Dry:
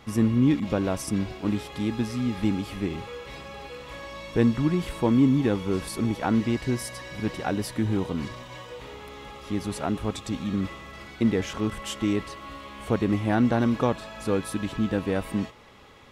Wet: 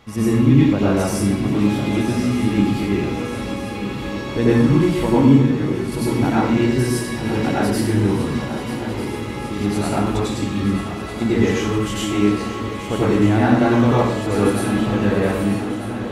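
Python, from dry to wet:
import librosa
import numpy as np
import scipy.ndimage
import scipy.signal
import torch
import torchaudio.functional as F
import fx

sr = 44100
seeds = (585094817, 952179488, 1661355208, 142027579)

y = fx.comb_fb(x, sr, f0_hz=77.0, decay_s=0.32, harmonics='all', damping=0.0, mix_pct=90, at=(5.3, 5.92))
y = fx.echo_swing(y, sr, ms=1245, ratio=3, feedback_pct=63, wet_db=-12.0)
y = fx.rev_plate(y, sr, seeds[0], rt60_s=0.79, hf_ratio=0.75, predelay_ms=80, drr_db=-8.0)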